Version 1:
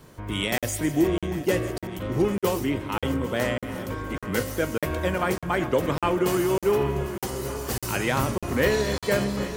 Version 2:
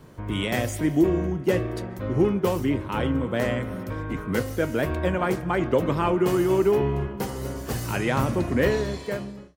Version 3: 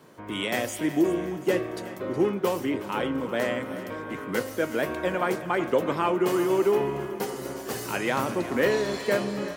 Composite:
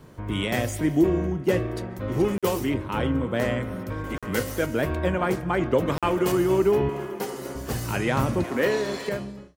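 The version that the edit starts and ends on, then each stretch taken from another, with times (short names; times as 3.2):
2
2.08–2.74 from 1
4.04–4.66 from 1
5.88–6.32 from 1
6.89–7.55 from 3
8.44–9.09 from 3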